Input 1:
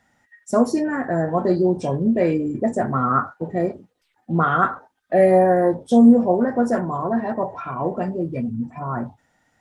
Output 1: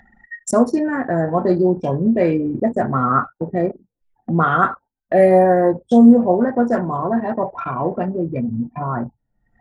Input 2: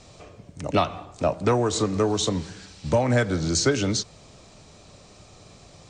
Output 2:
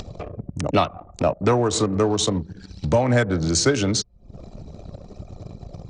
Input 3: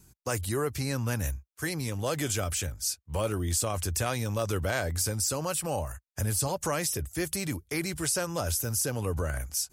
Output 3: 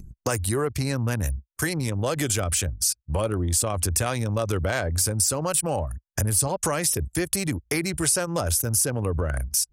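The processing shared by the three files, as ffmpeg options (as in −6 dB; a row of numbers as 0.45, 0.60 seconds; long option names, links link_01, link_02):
-af "acompressor=mode=upward:threshold=-21dB:ratio=2.5,anlmdn=39.8,adynamicequalizer=threshold=0.00398:dfrequency=9400:dqfactor=5.1:tfrequency=9400:tqfactor=5.1:attack=5:release=100:ratio=0.375:range=3.5:mode=boostabove:tftype=bell,volume=2.5dB"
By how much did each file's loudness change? +2.5, +2.5, +5.5 LU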